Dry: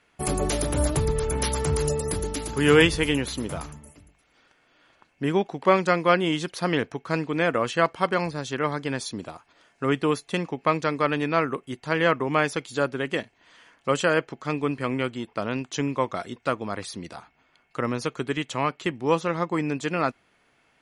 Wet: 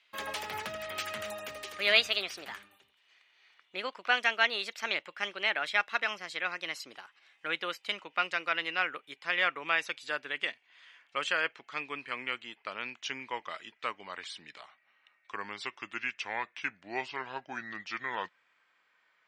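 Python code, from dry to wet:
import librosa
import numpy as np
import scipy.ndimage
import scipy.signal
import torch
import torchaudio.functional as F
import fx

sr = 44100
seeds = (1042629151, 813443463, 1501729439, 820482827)

y = fx.speed_glide(x, sr, from_pct=147, to_pct=69)
y = fx.bandpass_q(y, sr, hz=2500.0, q=1.3)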